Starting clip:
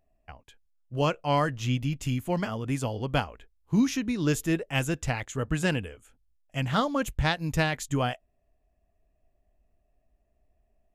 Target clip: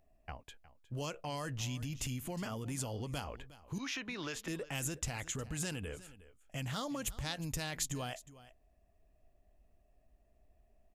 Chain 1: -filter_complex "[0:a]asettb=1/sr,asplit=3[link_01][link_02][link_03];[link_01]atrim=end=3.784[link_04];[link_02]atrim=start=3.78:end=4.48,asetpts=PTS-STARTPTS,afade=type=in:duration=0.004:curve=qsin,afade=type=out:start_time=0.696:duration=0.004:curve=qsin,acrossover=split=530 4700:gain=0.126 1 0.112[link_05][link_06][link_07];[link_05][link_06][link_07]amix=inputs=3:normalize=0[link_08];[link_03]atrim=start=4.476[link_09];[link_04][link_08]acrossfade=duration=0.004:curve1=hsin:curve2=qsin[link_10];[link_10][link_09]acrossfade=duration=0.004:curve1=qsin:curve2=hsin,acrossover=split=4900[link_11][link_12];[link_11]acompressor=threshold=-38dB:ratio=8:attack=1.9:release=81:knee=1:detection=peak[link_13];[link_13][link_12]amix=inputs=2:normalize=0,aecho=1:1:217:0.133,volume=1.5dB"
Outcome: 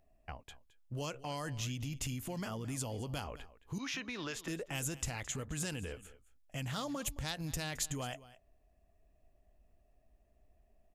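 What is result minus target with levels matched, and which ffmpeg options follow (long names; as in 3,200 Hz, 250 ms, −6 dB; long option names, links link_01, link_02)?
echo 144 ms early
-filter_complex "[0:a]asettb=1/sr,asplit=3[link_01][link_02][link_03];[link_01]atrim=end=3.784[link_04];[link_02]atrim=start=3.78:end=4.48,asetpts=PTS-STARTPTS,afade=type=in:duration=0.004:curve=qsin,afade=type=out:start_time=0.696:duration=0.004:curve=qsin,acrossover=split=530 4700:gain=0.126 1 0.112[link_05][link_06][link_07];[link_05][link_06][link_07]amix=inputs=3:normalize=0[link_08];[link_03]atrim=start=4.476[link_09];[link_04][link_08]acrossfade=duration=0.004:curve1=hsin:curve2=qsin[link_10];[link_10][link_09]acrossfade=duration=0.004:curve1=qsin:curve2=hsin,acrossover=split=4900[link_11][link_12];[link_11]acompressor=threshold=-38dB:ratio=8:attack=1.9:release=81:knee=1:detection=peak[link_13];[link_13][link_12]amix=inputs=2:normalize=0,aecho=1:1:361:0.133,volume=1.5dB"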